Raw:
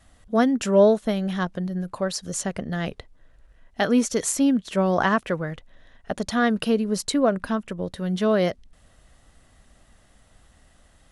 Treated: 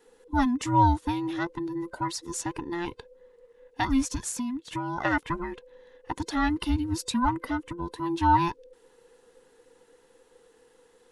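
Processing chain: band inversion scrambler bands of 500 Hz; 4.15–5.05 compressor 10:1, threshold -24 dBFS, peak gain reduction 8.5 dB; 7.89–8.37 bell 910 Hz +8.5 dB 0.54 oct; gain -4.5 dB

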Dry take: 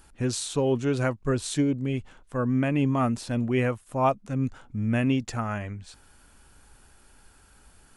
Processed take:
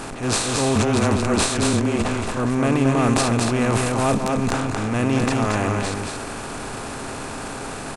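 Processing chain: per-bin compression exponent 0.4; transient shaper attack -9 dB, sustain +11 dB; 0.75–2.37 frequency shift -19 Hz; on a send: echo 0.227 s -3.5 dB

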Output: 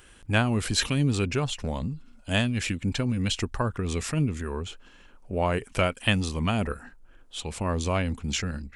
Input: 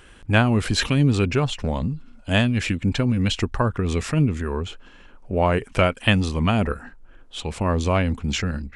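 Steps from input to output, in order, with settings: high shelf 5600 Hz +11 dB; gain -6 dB

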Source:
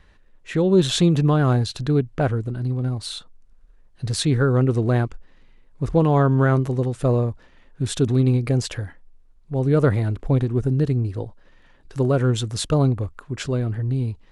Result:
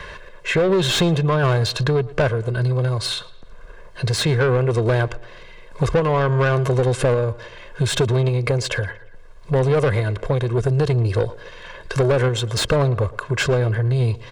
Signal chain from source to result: low shelf 240 Hz +7 dB; comb 1.9 ms, depth 88%; compressor, threshold -15 dBFS, peak gain reduction 8 dB; random-step tremolo; overdrive pedal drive 21 dB, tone 4700 Hz, clips at -9 dBFS; tape echo 0.114 s, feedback 45%, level -19 dB, low-pass 3300 Hz; three-band squash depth 40%

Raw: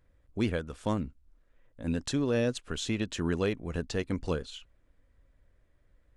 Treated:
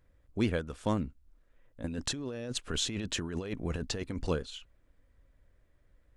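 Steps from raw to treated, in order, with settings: 1.84–4.27 negative-ratio compressor -35 dBFS, ratio -1

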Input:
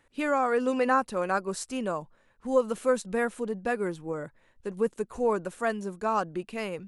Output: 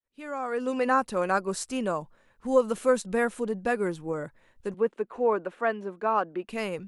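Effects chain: opening faded in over 1.13 s; 4.74–6.49 three-band isolator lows -20 dB, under 220 Hz, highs -23 dB, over 3400 Hz; gain +2 dB

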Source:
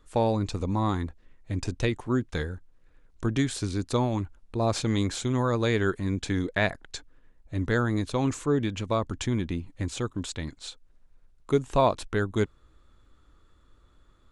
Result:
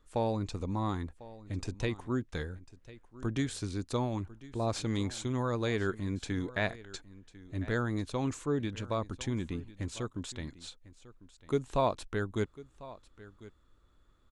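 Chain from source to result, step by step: echo 1.048 s -18.5 dB; gain -6.5 dB

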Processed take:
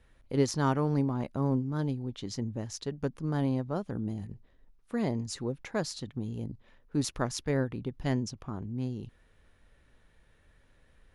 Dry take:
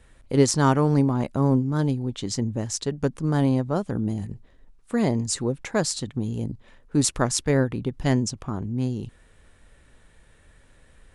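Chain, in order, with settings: bell 8100 Hz -11 dB 0.44 oct; gain -8 dB

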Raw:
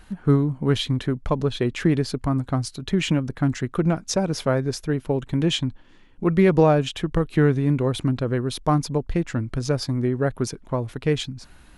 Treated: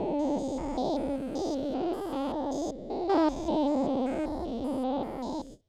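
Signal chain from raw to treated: stepped spectrum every 0.4 s; LPF 2200 Hz 12 dB/oct; band shelf 840 Hz -10 dB; gate with hold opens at -35 dBFS; wide varispeed 2.07×; gain -3 dB

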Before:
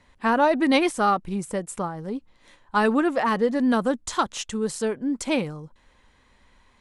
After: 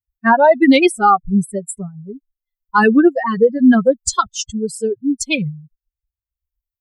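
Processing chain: per-bin expansion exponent 3; rotary speaker horn 5.5 Hz, later 0.75 Hz, at 0.7; maximiser +19.5 dB; gain -2 dB

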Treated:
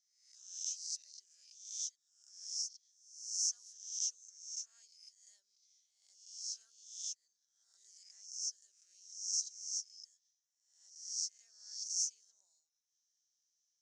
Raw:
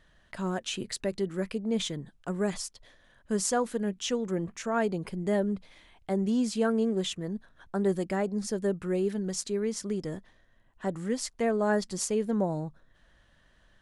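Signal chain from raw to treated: spectral swells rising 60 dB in 0.72 s; Butterworth band-pass 5900 Hz, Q 4.8; harmoniser +3 st -14 dB; gain +1.5 dB

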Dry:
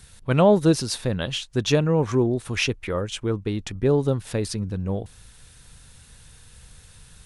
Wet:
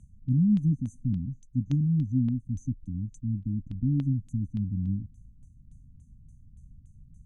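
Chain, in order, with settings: brick-wall FIR band-stop 290–6000 Hz; LFO low-pass saw down 3.5 Hz 420–3400 Hz; gain -1.5 dB

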